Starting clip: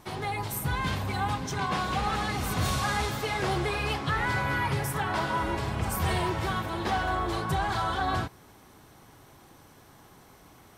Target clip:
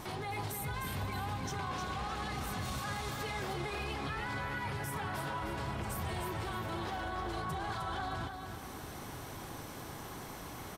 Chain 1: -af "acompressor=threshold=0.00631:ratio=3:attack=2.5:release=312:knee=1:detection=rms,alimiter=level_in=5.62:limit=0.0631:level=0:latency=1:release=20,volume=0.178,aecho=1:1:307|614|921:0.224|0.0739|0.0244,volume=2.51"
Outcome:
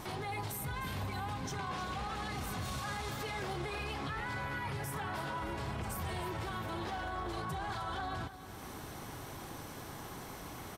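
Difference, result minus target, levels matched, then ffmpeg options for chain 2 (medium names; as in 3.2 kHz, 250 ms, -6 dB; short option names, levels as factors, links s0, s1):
echo-to-direct -7 dB
-af "acompressor=threshold=0.00631:ratio=3:attack=2.5:release=312:knee=1:detection=rms,alimiter=level_in=5.62:limit=0.0631:level=0:latency=1:release=20,volume=0.178,aecho=1:1:307|614|921|1228:0.501|0.165|0.0546|0.018,volume=2.51"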